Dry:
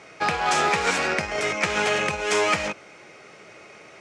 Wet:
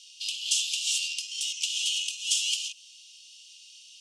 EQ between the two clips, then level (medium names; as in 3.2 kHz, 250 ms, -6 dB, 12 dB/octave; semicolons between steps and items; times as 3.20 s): Chebyshev high-pass 2.8 kHz, order 8; dynamic bell 4.4 kHz, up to -5 dB, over -46 dBFS, Q 1.3; +7.5 dB